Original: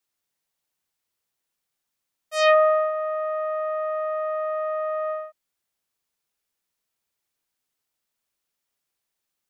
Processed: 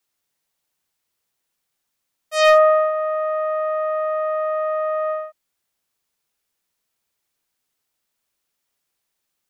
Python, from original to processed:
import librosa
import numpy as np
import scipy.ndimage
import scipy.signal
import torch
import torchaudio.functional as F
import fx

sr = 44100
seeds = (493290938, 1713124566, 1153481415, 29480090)

y = np.clip(x, -10.0 ** (-11.0 / 20.0), 10.0 ** (-11.0 / 20.0))
y = y * 10.0 ** (4.5 / 20.0)